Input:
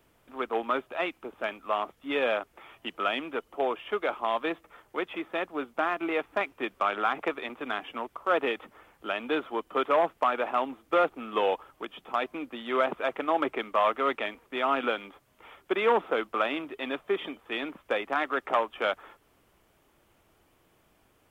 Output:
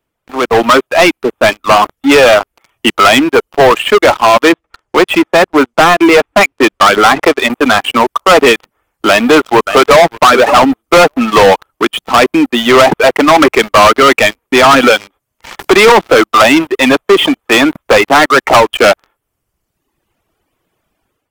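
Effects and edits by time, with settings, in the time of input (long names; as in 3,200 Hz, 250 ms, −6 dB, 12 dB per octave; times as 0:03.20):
0:04.52–0:07.50: high-frequency loss of the air 55 metres
0:09.08–0:10.19: delay throw 580 ms, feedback 20%, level −12.5 dB
0:15.59–0:16.24: multiband upward and downward compressor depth 40%
whole clip: reverb reduction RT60 1.5 s; leveller curve on the samples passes 5; automatic gain control gain up to 10.5 dB; level +2.5 dB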